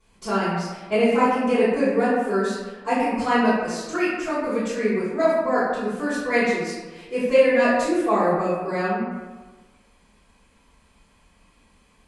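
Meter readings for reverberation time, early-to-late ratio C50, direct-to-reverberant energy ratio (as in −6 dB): 1.3 s, −1.5 dB, −17.0 dB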